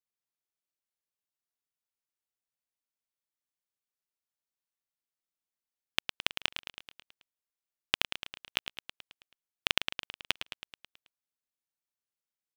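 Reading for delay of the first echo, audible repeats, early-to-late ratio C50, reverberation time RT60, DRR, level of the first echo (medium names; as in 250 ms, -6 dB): 108 ms, 6, no reverb, no reverb, no reverb, -9.0 dB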